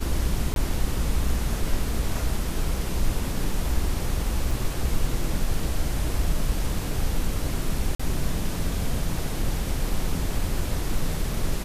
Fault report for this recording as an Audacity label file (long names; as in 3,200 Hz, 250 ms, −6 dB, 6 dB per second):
0.540000	0.560000	drop-out 22 ms
4.510000	4.510000	drop-out 4.3 ms
7.950000	8.000000	drop-out 45 ms